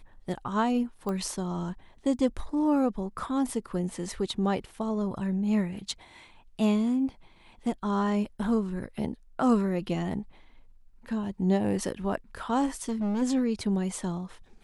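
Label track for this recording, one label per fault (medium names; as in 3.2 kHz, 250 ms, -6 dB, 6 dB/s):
1.090000	1.090000	pop -21 dBFS
12.660000	13.230000	clipped -26 dBFS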